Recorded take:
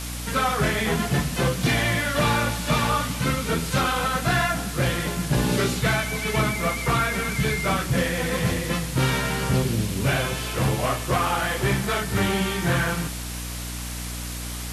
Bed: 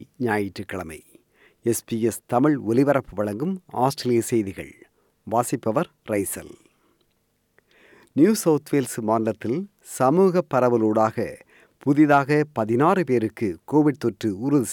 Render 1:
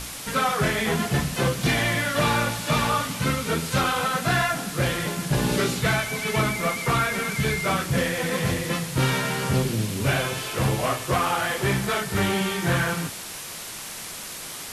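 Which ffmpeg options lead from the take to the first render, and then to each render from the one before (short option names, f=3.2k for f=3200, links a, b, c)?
-af "bandreject=f=60:t=h:w=6,bandreject=f=120:t=h:w=6,bandreject=f=180:t=h:w=6,bandreject=f=240:t=h:w=6,bandreject=f=300:t=h:w=6"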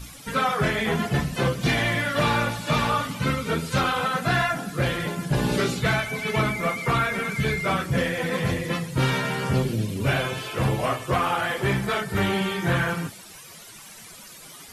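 -af "afftdn=nr=13:nf=-36"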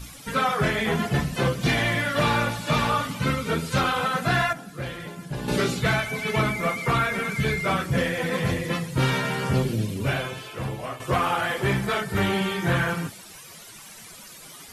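-filter_complex "[0:a]asplit=4[a][b][c][d];[a]atrim=end=4.532[e];[b]atrim=start=4.528:end=5.482,asetpts=PTS-STARTPTS,volume=-8.5dB[f];[c]atrim=start=5.478:end=11,asetpts=PTS-STARTPTS,afade=t=out:st=4.382:d=1.14:c=qua:silence=0.375837[g];[d]atrim=start=11,asetpts=PTS-STARTPTS,afade=t=in:d=0.004:c=hsin:silence=0.375837[h];[e][f]acrossfade=d=0.004:c1=hsin:c2=hsin[i];[g][h]concat=n=2:v=0:a=1[j];[i][j]acrossfade=d=0.004:c1=hsin:c2=hsin"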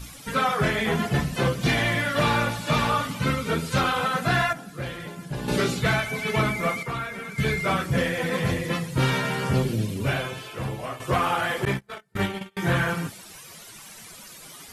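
-filter_complex "[0:a]asettb=1/sr,asplit=3[a][b][c];[a]atrim=end=11.654[d];[b]atrim=start=11.65:end=12.57,asetpts=PTS-STARTPTS,afade=t=in:d=0.004:c=qsin,afade=t=out:st=0.916:d=0.004:c=qsin,agate=range=-38dB:threshold=-23dB:ratio=16:release=100:detection=peak[e];[c]atrim=start=12.566[f];[d][e]acrossfade=d=0.004:c1=hsin:c2=qsin[g];[g][f]acrossfade=d=0.004:c1=qsin:c2=hsin,asplit=3[h][i][j];[h]atrim=end=6.832[k];[i]atrim=start=6.828:end=7.382,asetpts=PTS-STARTPTS,volume=-8dB[l];[j]atrim=start=7.378[m];[k][l]acrossfade=d=0.004:c1=hsin:c2=hsin[n];[n][m]acrossfade=d=0.004:c1=hsin:c2=hsin"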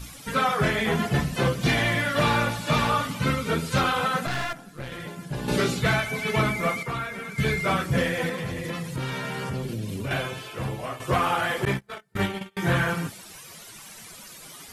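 -filter_complex "[0:a]asettb=1/sr,asplit=3[a][b][c];[a]atrim=end=4.264[d];[b]atrim=start=4.26:end=4.92,asetpts=PTS-STARTPTS,afade=t=in:d=0.004:c=qsin,afade=t=out:st=0.656:d=0.004:c=qsin,aeval=exprs='(tanh(20*val(0)+0.8)-tanh(0.8))/20':c=same[e];[c]atrim=start=4.916[f];[d][e]acrossfade=d=0.004:c1=hsin:c2=qsin[g];[g][f]acrossfade=d=0.004:c1=qsin:c2=hsin,asettb=1/sr,asplit=3[h][i][j];[h]atrim=end=8.294[k];[i]atrim=start=8.29:end=10.11,asetpts=PTS-STARTPTS,afade=t=in:d=0.004:c=qsin,afade=t=out:st=1.816:d=0.004:c=qsin,acompressor=threshold=-27dB:ratio=6:attack=3.2:release=140:knee=1:detection=peak[l];[j]atrim=start=10.106[m];[k][l]acrossfade=d=0.004:c1=hsin:c2=qsin[n];[n][m]acrossfade=d=0.004:c1=qsin:c2=hsin"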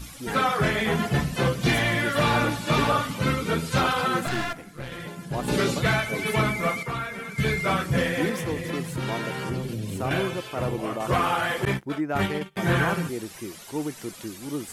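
-filter_complex "[1:a]volume=-12dB[a];[0:a][a]amix=inputs=2:normalize=0"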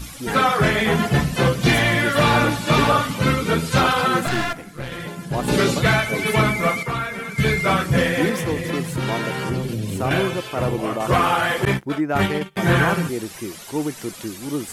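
-af "volume=5.5dB"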